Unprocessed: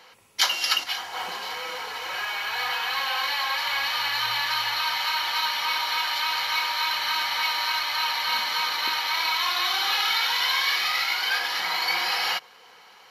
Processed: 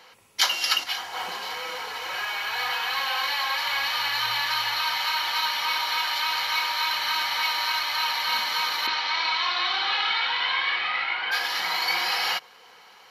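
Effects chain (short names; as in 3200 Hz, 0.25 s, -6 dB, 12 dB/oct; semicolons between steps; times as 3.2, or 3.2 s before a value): 8.86–11.31 LPF 5600 Hz -> 2800 Hz 24 dB/oct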